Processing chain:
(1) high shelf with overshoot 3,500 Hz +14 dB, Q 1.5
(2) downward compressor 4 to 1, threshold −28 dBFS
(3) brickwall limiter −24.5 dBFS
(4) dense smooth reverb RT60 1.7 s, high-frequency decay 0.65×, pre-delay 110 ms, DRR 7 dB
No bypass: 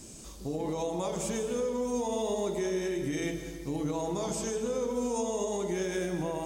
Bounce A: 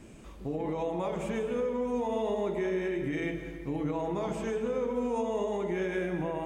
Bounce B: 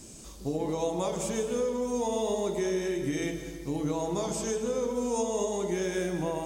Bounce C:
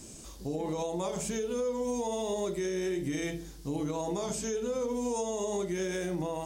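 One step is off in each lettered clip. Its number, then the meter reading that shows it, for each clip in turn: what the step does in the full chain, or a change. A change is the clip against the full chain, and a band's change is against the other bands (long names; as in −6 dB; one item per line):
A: 1, 4 kHz band −6.5 dB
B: 3, change in integrated loudness +1.5 LU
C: 4, change in crest factor −3.5 dB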